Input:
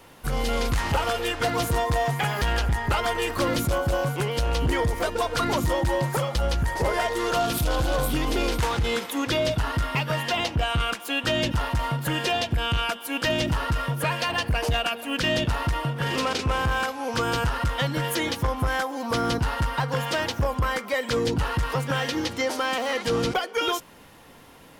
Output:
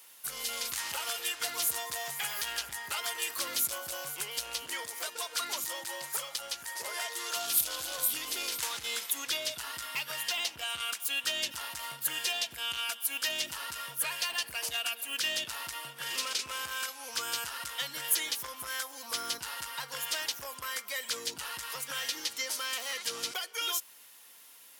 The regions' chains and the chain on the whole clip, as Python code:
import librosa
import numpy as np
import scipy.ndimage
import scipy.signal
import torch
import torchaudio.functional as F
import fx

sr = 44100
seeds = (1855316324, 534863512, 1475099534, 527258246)

y = fx.chain(x, sr, fx.highpass(hz=240.0, slope=6),
    fx.high_shelf(hz=9800.0, db=-3.5), at=(4.61, 7.36))
y = np.diff(y, prepend=0.0)
y = fx.notch(y, sr, hz=780.0, q=22.0)
y = y * librosa.db_to_amplitude(3.0)